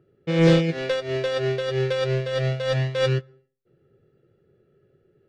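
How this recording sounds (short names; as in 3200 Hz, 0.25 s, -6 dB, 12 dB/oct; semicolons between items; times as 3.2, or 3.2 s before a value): noise floor -66 dBFS; spectral tilt -5.5 dB/oct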